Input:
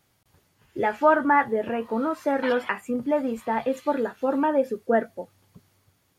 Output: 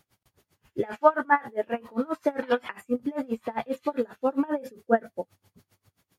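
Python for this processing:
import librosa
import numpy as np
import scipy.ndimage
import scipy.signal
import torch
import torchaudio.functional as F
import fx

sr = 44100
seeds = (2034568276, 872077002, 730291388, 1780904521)

y = fx.low_shelf(x, sr, hz=210.0, db=-11.0, at=(0.96, 1.74))
y = y * 10.0 ** (-27 * (0.5 - 0.5 * np.cos(2.0 * np.pi * 7.5 * np.arange(len(y)) / sr)) / 20.0)
y = y * 10.0 ** (3.5 / 20.0)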